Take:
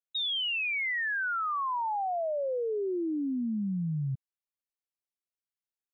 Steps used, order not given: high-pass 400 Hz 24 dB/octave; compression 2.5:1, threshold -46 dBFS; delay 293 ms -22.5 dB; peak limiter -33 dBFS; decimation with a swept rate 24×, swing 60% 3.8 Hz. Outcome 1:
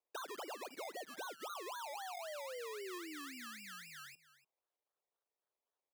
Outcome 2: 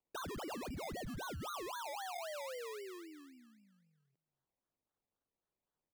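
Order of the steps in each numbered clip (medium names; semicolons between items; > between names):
decimation with a swept rate > delay > peak limiter > high-pass > compression; peak limiter > delay > compression > high-pass > decimation with a swept rate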